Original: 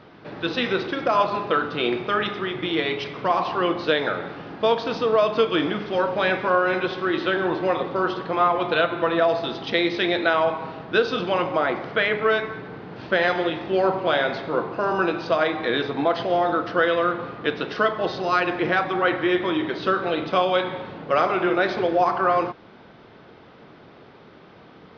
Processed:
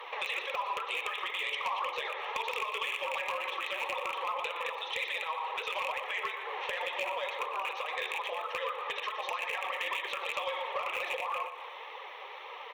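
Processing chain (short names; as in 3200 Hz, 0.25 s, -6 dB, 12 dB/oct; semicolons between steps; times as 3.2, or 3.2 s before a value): rattling part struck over -31 dBFS, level -15 dBFS; steep high-pass 540 Hz 48 dB/oct; high shelf 4700 Hz +8 dB; in parallel at -2.5 dB: vocal rider 0.5 s; on the sum: limiter -9.5 dBFS, peak gain reduction 8 dB; compressor 6:1, threshold -35 dBFS, peak gain reduction 19 dB; fixed phaser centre 990 Hz, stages 8; granular stretch 0.51×, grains 26 ms; flange 2 Hz, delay 1.6 ms, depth 3.9 ms, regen +34%; feedback echo 0.119 s, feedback 52%, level -11 dB; added harmonics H 5 -11 dB, 6 -43 dB, 8 -45 dB, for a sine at -24 dBFS; gain +3 dB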